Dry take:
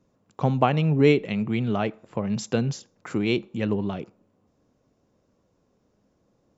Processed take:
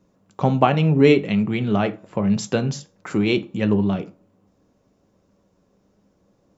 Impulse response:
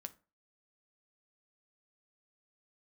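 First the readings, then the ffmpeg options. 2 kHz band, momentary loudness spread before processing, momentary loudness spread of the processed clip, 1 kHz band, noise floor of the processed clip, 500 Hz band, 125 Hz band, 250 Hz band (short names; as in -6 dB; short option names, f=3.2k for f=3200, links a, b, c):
+4.0 dB, 13 LU, 12 LU, +4.5 dB, -64 dBFS, +4.0 dB, +3.5 dB, +5.5 dB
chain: -filter_complex "[1:a]atrim=start_sample=2205,afade=t=out:st=0.19:d=0.01,atrim=end_sample=8820[a];[0:a][a]afir=irnorm=-1:irlink=0,volume=9dB"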